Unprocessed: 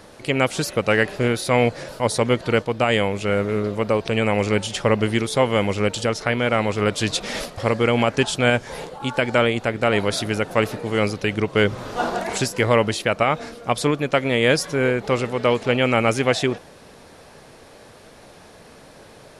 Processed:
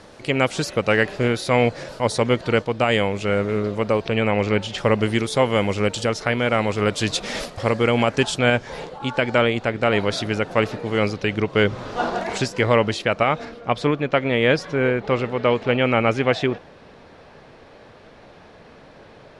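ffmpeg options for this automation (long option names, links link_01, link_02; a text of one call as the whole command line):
ffmpeg -i in.wav -af "asetnsamples=nb_out_samples=441:pad=0,asendcmd='4.05 lowpass f 4300;4.78 lowpass f 9500;8.39 lowpass f 5700;13.45 lowpass f 3500',lowpass=7700" out.wav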